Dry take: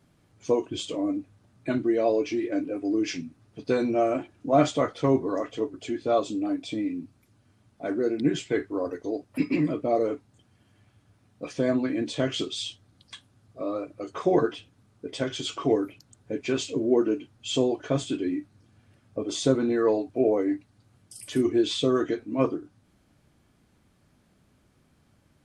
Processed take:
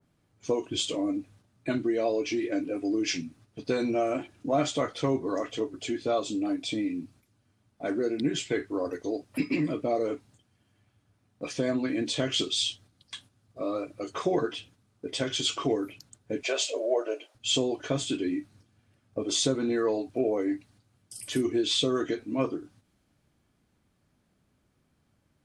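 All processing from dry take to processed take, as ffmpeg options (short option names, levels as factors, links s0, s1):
-filter_complex "[0:a]asettb=1/sr,asplit=3[s0][s1][s2];[s0]atrim=end=16.434[s3];[s1]atrim=start=16.43:end=17.35,asetpts=PTS-STARTPTS,afade=t=in:d=0.004:c=qsin,afade=t=out:st=0.916:d=0.004:c=qsin,highpass=f=480:w=0.5412,highpass=f=480:w=1.3066,equalizer=f=610:t=o:w=0.57:g=15[s4];[s2]atrim=start=17.346[s5];[s3][s4]acrossfade=d=0.004:c1=hsin:c2=qsin[s6];[s6][s5]acrossfade=d=0.004:c1=qsin:c2=hsin,agate=range=0.447:threshold=0.00178:ratio=16:detection=peak,acompressor=threshold=0.0501:ratio=2,adynamicequalizer=threshold=0.00398:dfrequency=2000:dqfactor=0.7:tfrequency=2000:tqfactor=0.7:attack=5:release=100:ratio=0.375:range=3:mode=boostabove:tftype=highshelf"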